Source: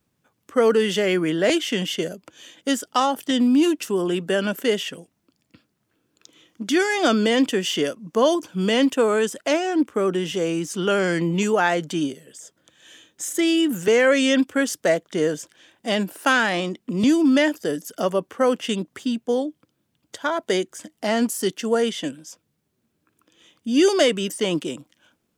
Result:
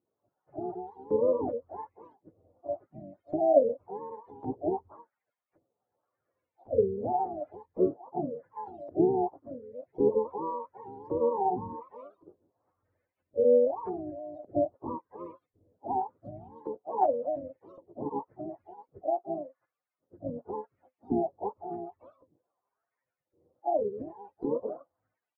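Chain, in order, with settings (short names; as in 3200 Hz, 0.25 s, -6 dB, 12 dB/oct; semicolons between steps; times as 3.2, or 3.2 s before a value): spectrum mirrored in octaves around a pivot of 400 Hz; LFO band-pass saw up 0.9 Hz 320–4200 Hz; harmoniser -12 st -15 dB, +3 st -9 dB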